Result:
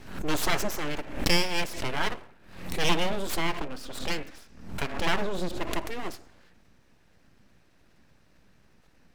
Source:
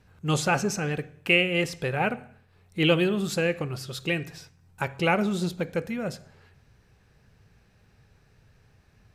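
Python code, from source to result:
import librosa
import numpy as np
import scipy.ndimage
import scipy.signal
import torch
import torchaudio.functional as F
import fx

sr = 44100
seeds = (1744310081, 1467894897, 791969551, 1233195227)

y = fx.high_shelf(x, sr, hz=fx.line((3.33, 7800.0), (5.53, 5200.0)), db=-10.5, at=(3.33, 5.53), fade=0.02)
y = np.abs(y)
y = fx.pre_swell(y, sr, db_per_s=84.0)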